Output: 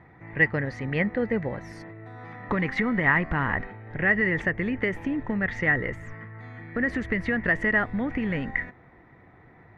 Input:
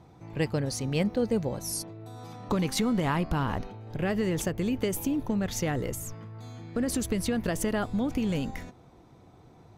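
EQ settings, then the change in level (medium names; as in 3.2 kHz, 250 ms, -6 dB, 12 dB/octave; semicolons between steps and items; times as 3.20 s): resonant low-pass 1.9 kHz, resonance Q 12; 0.0 dB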